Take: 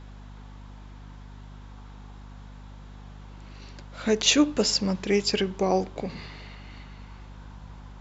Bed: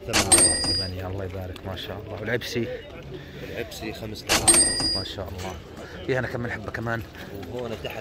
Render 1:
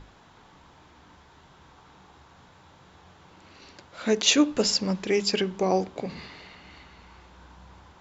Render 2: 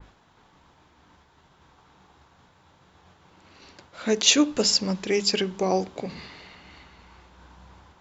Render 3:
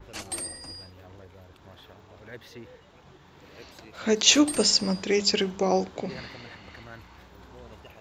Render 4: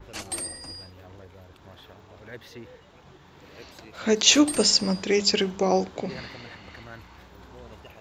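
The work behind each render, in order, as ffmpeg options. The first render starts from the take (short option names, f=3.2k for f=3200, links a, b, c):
-af "bandreject=f=50:t=h:w=6,bandreject=f=100:t=h:w=6,bandreject=f=150:t=h:w=6,bandreject=f=200:t=h:w=6,bandreject=f=250:t=h:w=6"
-af "agate=range=-33dB:threshold=-49dB:ratio=3:detection=peak,adynamicequalizer=threshold=0.0126:dfrequency=3200:dqfactor=0.7:tfrequency=3200:tqfactor=0.7:attack=5:release=100:ratio=0.375:range=2:mode=boostabove:tftype=highshelf"
-filter_complex "[1:a]volume=-17.5dB[a];[0:a][a]amix=inputs=2:normalize=0"
-af "volume=1.5dB,alimiter=limit=-2dB:level=0:latency=1"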